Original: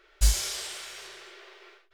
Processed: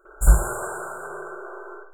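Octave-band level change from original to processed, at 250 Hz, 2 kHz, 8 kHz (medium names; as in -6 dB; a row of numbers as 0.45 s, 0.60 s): +16.5 dB, +7.5 dB, -0.5 dB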